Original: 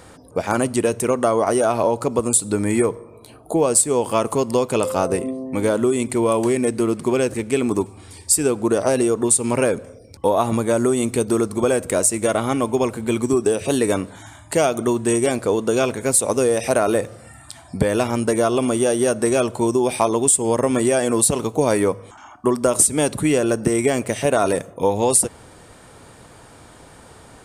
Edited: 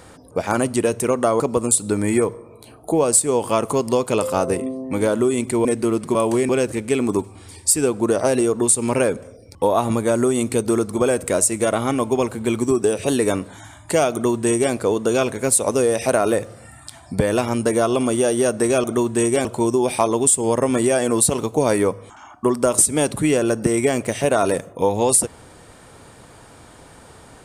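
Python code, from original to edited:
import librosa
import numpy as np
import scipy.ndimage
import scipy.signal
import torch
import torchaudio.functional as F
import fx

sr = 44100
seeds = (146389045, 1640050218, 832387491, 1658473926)

y = fx.edit(x, sr, fx.cut(start_s=1.4, length_s=0.62),
    fx.move(start_s=6.27, length_s=0.34, to_s=7.11),
    fx.duplicate(start_s=14.74, length_s=0.61, to_s=19.46), tone=tone)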